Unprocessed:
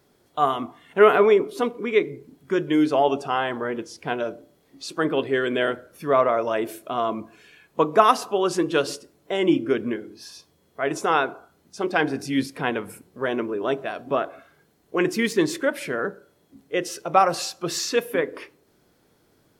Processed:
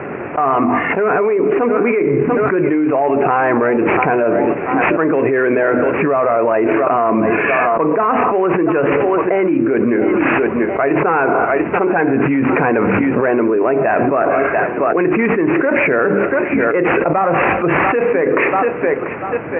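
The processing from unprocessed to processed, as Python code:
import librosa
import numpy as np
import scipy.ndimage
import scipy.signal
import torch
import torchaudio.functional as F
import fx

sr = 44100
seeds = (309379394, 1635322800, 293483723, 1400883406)

p1 = fx.cvsd(x, sr, bps=32000)
p2 = scipy.signal.sosfilt(scipy.signal.butter(2, 100.0, 'highpass', fs=sr, output='sos'), p1)
p3 = fx.low_shelf(p2, sr, hz=280.0, db=-11.0)
p4 = fx.hum_notches(p3, sr, base_hz=50, count=5)
p5 = p4 + fx.echo_thinned(p4, sr, ms=690, feedback_pct=33, hz=250.0, wet_db=-23.0, dry=0)
p6 = fx.rider(p5, sr, range_db=4, speed_s=2.0)
p7 = scipy.signal.sosfilt(scipy.signal.butter(16, 2600.0, 'lowpass', fs=sr, output='sos'), p6)
p8 = fx.tilt_eq(p7, sr, slope=-2.0)
p9 = fx.env_flatten(p8, sr, amount_pct=100)
y = p9 * librosa.db_to_amplitude(-2.5)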